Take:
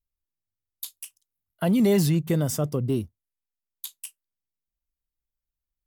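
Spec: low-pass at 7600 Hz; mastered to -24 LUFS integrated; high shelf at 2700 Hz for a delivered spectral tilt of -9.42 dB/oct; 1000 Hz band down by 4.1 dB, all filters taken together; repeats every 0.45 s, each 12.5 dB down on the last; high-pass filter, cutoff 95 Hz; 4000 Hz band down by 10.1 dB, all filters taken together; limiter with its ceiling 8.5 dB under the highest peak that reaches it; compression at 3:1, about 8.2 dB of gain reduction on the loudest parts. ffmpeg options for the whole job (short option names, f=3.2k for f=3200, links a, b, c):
-af "highpass=95,lowpass=7.6k,equalizer=f=1k:t=o:g=-5,highshelf=f=2.7k:g=-9,equalizer=f=4k:t=o:g=-5,acompressor=threshold=-29dB:ratio=3,alimiter=level_in=2dB:limit=-24dB:level=0:latency=1,volume=-2dB,aecho=1:1:450|900|1350:0.237|0.0569|0.0137,volume=11dB"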